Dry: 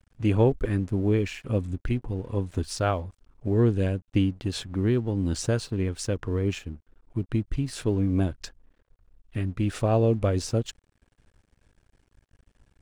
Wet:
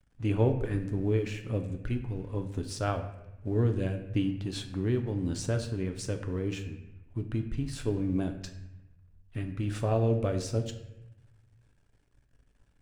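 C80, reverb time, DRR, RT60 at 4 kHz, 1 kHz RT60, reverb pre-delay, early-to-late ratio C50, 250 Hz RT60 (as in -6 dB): 12.0 dB, 0.90 s, 5.5 dB, 0.70 s, 0.90 s, 7 ms, 9.5 dB, 1.3 s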